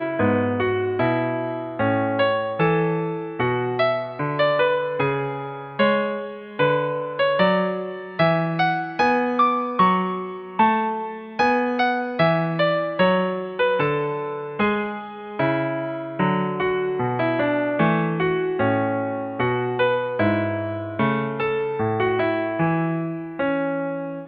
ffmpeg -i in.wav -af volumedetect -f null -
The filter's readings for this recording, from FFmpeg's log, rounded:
mean_volume: -21.9 dB
max_volume: -5.7 dB